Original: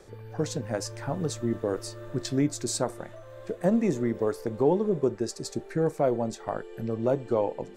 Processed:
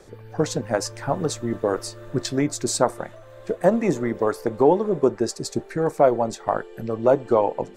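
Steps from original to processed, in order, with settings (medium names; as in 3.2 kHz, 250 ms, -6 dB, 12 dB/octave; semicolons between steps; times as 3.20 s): harmonic-percussive split percussive +6 dB; dynamic bell 1 kHz, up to +6 dB, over -35 dBFS, Q 0.72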